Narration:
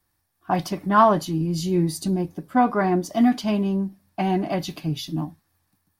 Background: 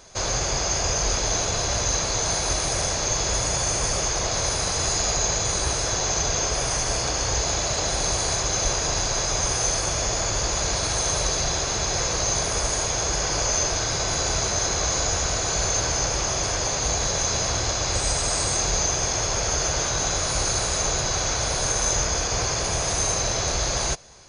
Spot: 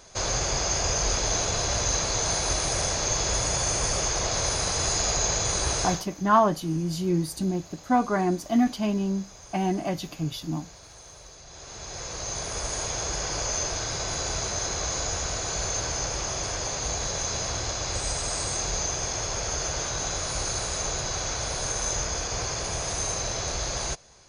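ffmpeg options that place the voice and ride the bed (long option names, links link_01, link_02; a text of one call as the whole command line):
ffmpeg -i stem1.wav -i stem2.wav -filter_complex "[0:a]adelay=5350,volume=-3.5dB[link_01];[1:a]volume=16dB,afade=type=out:start_time=5.83:duration=0.22:silence=0.0841395,afade=type=in:start_time=11.46:duration=1.39:silence=0.125893[link_02];[link_01][link_02]amix=inputs=2:normalize=0" out.wav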